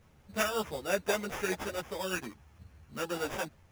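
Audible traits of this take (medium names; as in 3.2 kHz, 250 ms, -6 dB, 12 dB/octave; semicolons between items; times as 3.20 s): aliases and images of a low sample rate 4.2 kHz, jitter 0%; a shimmering, thickened sound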